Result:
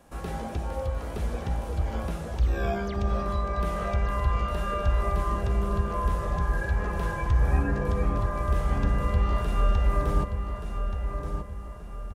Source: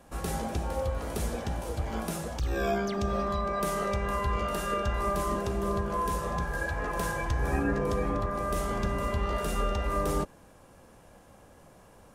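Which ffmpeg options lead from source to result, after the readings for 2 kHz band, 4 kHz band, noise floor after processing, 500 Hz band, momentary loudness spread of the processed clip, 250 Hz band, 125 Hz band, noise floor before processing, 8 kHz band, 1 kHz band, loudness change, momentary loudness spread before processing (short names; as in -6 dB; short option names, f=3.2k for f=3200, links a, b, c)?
-1.0 dB, -3.0 dB, -37 dBFS, -1.5 dB, 8 LU, 0.0 dB, +6.5 dB, -55 dBFS, -8.0 dB, -0.5 dB, +2.5 dB, 4 LU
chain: -filter_complex "[0:a]asplit=2[a][b];[b]adelay=1177,lowpass=f=2.4k:p=1,volume=-7dB,asplit=2[c][d];[d]adelay=1177,lowpass=f=2.4k:p=1,volume=0.44,asplit=2[e][f];[f]adelay=1177,lowpass=f=2.4k:p=1,volume=0.44,asplit=2[g][h];[h]adelay=1177,lowpass=f=2.4k:p=1,volume=0.44,asplit=2[i][j];[j]adelay=1177,lowpass=f=2.4k:p=1,volume=0.44[k];[a][c][e][g][i][k]amix=inputs=6:normalize=0,acrossover=split=3900[l][m];[m]acompressor=threshold=-52dB:ratio=4:attack=1:release=60[n];[l][n]amix=inputs=2:normalize=0,asubboost=boost=2.5:cutoff=150,volume=-1dB"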